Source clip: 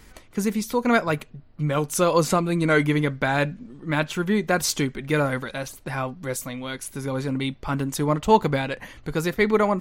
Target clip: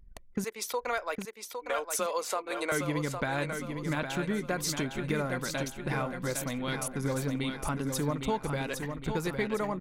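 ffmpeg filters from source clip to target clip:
-filter_complex "[0:a]asettb=1/sr,asplit=3[a][b][c];[a]atrim=end=0.444[d];[b]atrim=start=0.44:end=2.72,asetpts=PTS-STARTPTS,afade=t=in:d=0.004:c=qsin,afade=t=out:st=2.276:d=0.004:c=qsin,highpass=f=460:w=0.5412,highpass=f=460:w=1.3066[e];[c]atrim=start=2.716[f];[d][e]acrossfade=d=0.004:c1=hsin:c2=qsin[g];[g][f]acrossfade=d=0.004:c1=qsin:c2=hsin,anlmdn=1,acompressor=threshold=-30dB:ratio=4,aecho=1:1:809|1618|2427|3236|4045:0.473|0.218|0.1|0.0461|0.0212"

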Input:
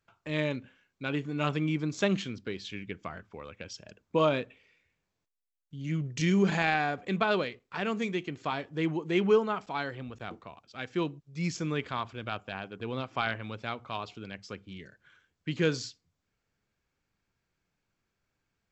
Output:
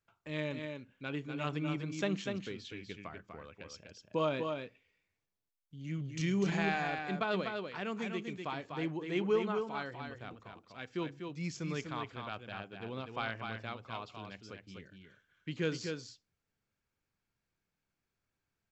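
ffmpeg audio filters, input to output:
-af "aecho=1:1:237|247:0.1|0.531,volume=-7dB"

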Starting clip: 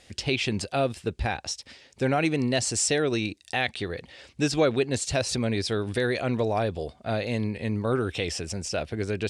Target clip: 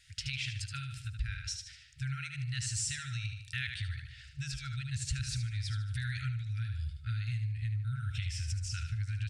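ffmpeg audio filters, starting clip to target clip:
-filter_complex "[0:a]asplit=2[a][b];[b]aecho=0:1:75|150|225|300|375:0.422|0.169|0.0675|0.027|0.0108[c];[a][c]amix=inputs=2:normalize=0,asubboost=boost=6:cutoff=140,acompressor=threshold=-24dB:ratio=6,afftfilt=real='re*(1-between(b*sr/4096,140,1300))':imag='im*(1-between(b*sr/4096,140,1300))':win_size=4096:overlap=0.75,volume=-6.5dB"

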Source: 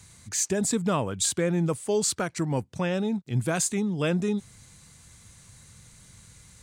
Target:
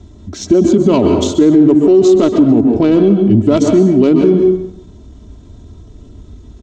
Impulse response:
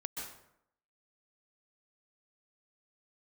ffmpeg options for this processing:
-filter_complex "[0:a]highshelf=f=6.1k:g=2,aecho=1:1:2.7:0.75,adynamicsmooth=sensitivity=0.5:basefreq=830,equalizer=f=125:t=o:w=1:g=-7,equalizer=f=250:t=o:w=1:g=8,equalizer=f=500:t=o:w=1:g=4,equalizer=f=1k:t=o:w=1:g=-4,equalizer=f=2k:t=o:w=1:g=-9,equalizer=f=4k:t=o:w=1:g=8,equalizer=f=8k:t=o:w=1:g=10,asetrate=39289,aresample=44100,atempo=1.12246,asplit=2[a][b];[b]adelay=160,highpass=300,lowpass=3.4k,asoftclip=type=hard:threshold=-19dB,volume=-22dB[c];[a][c]amix=inputs=2:normalize=0,asplit=2[d][e];[1:a]atrim=start_sample=2205[f];[e][f]afir=irnorm=-1:irlink=0,volume=0dB[g];[d][g]amix=inputs=2:normalize=0,alimiter=level_in=15dB:limit=-1dB:release=50:level=0:latency=1,volume=-1dB"

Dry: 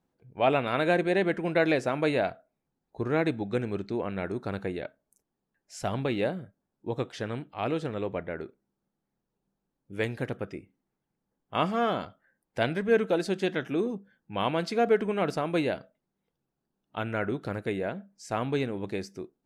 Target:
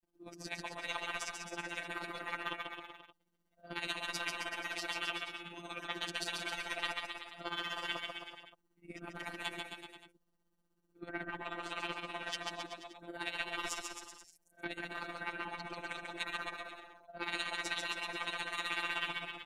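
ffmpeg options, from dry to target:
-filter_complex "[0:a]areverse,afftfilt=real='re*lt(hypot(re,im),0.0562)':imag='im*lt(hypot(re,im),0.0562)':win_size=1024:overlap=0.75,aecho=1:1:3.2:0.88,afftfilt=real='hypot(re,im)*cos(PI*b)':imag='0':win_size=1024:overlap=0.75,tremolo=f=16:d=0.73,aeval=exprs='0.0841*(cos(1*acos(clip(val(0)/0.0841,-1,1)))-cos(1*PI/2))+0.0015*(cos(7*acos(clip(val(0)/0.0841,-1,1)))-cos(7*PI/2))':c=same,asplit=2[a][b];[b]aecho=0:1:140|266|379.4|481.5|573.3:0.631|0.398|0.251|0.158|0.1[c];[a][c]amix=inputs=2:normalize=0,volume=5.5dB"

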